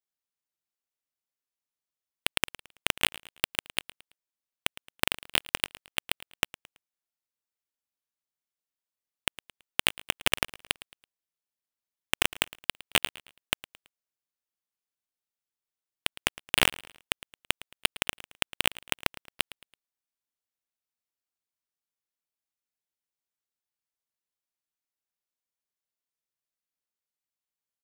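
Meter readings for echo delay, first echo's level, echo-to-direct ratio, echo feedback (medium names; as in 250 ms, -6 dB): 110 ms, -19.0 dB, -18.5 dB, 39%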